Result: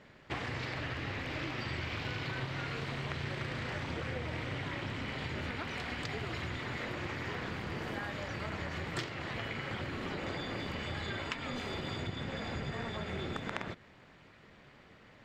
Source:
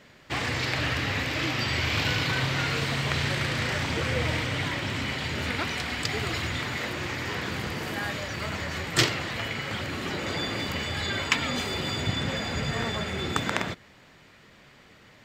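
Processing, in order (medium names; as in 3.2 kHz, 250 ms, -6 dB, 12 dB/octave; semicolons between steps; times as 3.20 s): low-pass 2.3 kHz 6 dB/octave; compression, threshold -32 dBFS, peak gain reduction 12.5 dB; AM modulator 250 Hz, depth 45%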